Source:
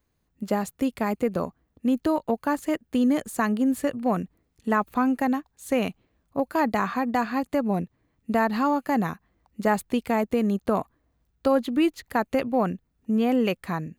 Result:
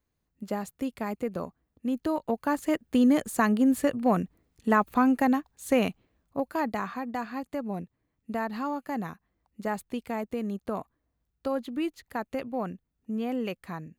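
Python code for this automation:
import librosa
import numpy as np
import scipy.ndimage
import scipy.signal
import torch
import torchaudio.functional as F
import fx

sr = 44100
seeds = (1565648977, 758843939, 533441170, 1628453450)

y = fx.gain(x, sr, db=fx.line((1.86, -6.5), (2.87, 0.5), (5.77, 0.5), (7.01, -8.5)))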